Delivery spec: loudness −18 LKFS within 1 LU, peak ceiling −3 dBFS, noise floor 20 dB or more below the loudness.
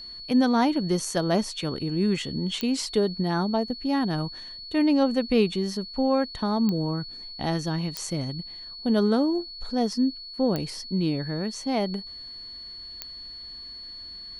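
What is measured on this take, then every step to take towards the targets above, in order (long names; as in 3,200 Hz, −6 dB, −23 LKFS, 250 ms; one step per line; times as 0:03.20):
number of clicks 5; interfering tone 4,400 Hz; level of the tone −38 dBFS; integrated loudness −26.0 LKFS; sample peak −10.0 dBFS; target loudness −18.0 LKFS
→ click removal
notch filter 4,400 Hz, Q 30
level +8 dB
brickwall limiter −3 dBFS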